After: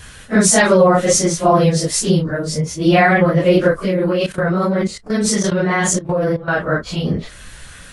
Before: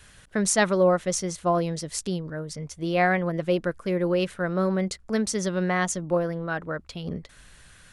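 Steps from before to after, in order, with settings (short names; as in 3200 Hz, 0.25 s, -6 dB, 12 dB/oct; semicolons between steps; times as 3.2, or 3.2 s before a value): phase scrambler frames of 0.1 s; 3.85–6.58 level quantiser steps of 15 dB; maximiser +15.5 dB; gain -2 dB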